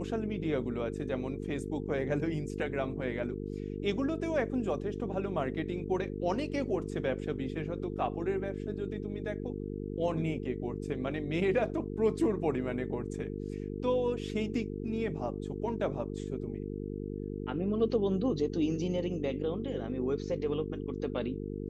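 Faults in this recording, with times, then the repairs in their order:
buzz 50 Hz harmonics 9 -38 dBFS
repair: de-hum 50 Hz, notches 9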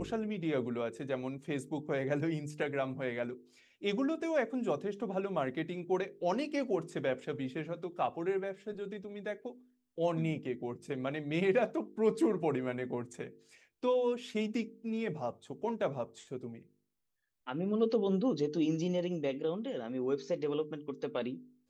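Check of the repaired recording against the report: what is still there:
none

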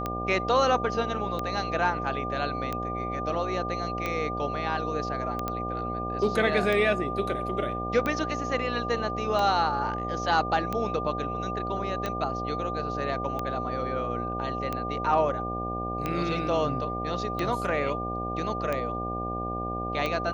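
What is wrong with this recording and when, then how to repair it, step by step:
buzz 60 Hz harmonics 13 -34 dBFS
tick 45 rpm -16 dBFS
tone 1200 Hz -32 dBFS
5.48 pop -16 dBFS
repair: de-click; de-hum 60 Hz, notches 13; notch 1200 Hz, Q 30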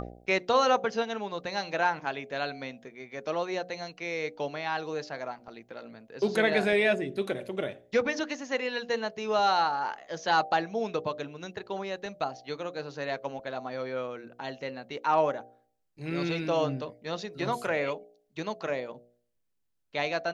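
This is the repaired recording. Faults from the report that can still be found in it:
none

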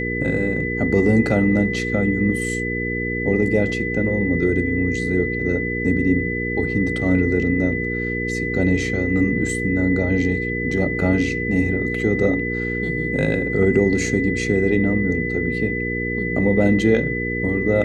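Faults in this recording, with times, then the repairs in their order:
hum 60 Hz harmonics 8 -26 dBFS
tone 2000 Hz -25 dBFS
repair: de-hum 60 Hz, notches 8; notch 2000 Hz, Q 30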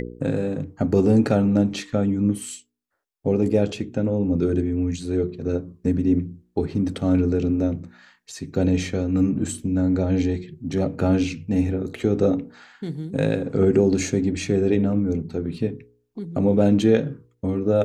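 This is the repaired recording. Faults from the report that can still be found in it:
none

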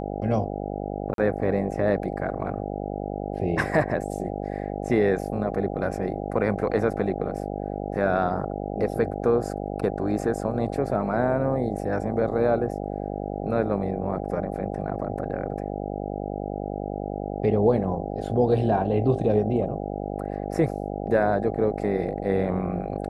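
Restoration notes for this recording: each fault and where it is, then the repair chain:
buzz 50 Hz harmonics 16 -31 dBFS
1.14–1.18 gap 42 ms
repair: de-hum 50 Hz, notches 16; interpolate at 1.14, 42 ms

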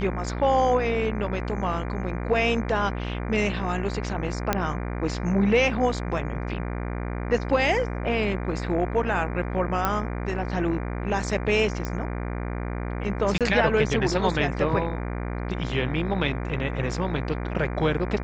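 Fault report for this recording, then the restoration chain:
buzz 60 Hz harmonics 40 -30 dBFS
4.53 pop -7 dBFS
9.85 pop -9 dBFS
11.85 pop -16 dBFS
13.38–13.41 gap 27 ms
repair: de-click; de-hum 60 Hz, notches 40; interpolate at 13.38, 27 ms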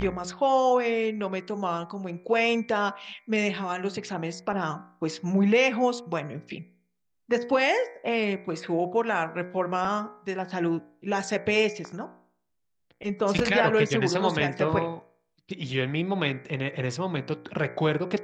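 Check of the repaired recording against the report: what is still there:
none

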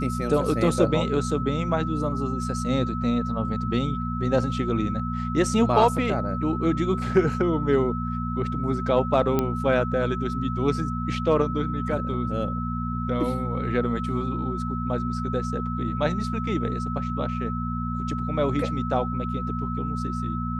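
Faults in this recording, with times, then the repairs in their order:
hum 60 Hz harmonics 4 -29 dBFS
tone 1300 Hz -32 dBFS
9.39 pop -10 dBFS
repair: de-click; notch 1300 Hz, Q 30; de-hum 60 Hz, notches 4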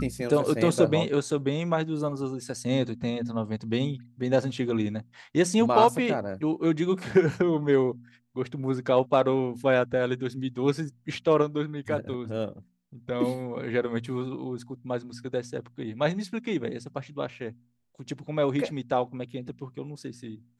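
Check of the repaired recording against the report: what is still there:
none

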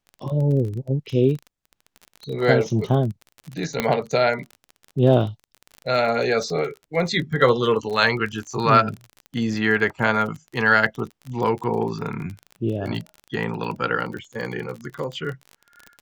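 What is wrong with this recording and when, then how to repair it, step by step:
crackle 29/s -29 dBFS
3.8 pop -6 dBFS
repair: de-click

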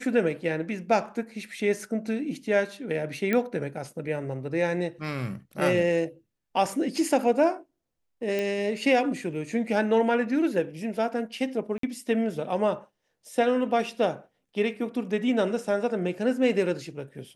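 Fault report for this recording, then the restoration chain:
3.33 pop -13 dBFS
8.39 pop -16 dBFS
11.78–11.83 gap 53 ms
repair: de-click; interpolate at 11.78, 53 ms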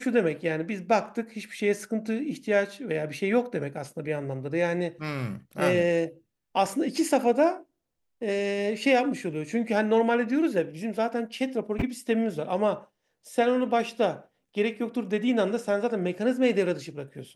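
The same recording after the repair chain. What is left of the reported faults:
none

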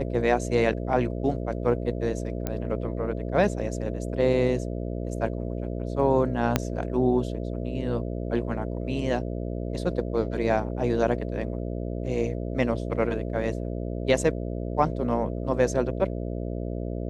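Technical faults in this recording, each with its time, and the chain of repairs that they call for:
buzz 60 Hz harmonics 11 -31 dBFS
2.47 pop -14 dBFS
6.56 pop -6 dBFS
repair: de-click; de-hum 60 Hz, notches 11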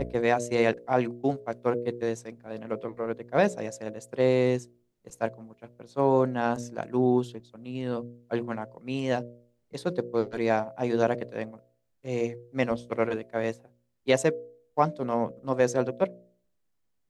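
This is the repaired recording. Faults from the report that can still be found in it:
6.56 pop

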